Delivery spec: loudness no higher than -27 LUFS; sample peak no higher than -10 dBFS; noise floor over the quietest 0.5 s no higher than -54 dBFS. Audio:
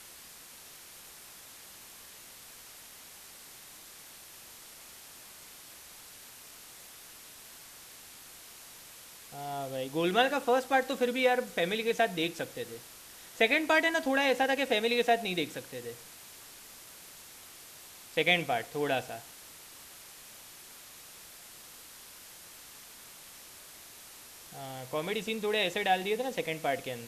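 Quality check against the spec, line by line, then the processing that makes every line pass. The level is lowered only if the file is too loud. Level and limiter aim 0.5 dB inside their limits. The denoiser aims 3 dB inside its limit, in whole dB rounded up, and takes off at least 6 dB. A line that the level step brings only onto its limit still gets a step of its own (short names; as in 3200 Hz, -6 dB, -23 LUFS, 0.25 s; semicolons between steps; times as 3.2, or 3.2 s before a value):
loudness -29.5 LUFS: OK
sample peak -11.0 dBFS: OK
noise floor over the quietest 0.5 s -51 dBFS: fail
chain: denoiser 6 dB, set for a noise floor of -51 dBFS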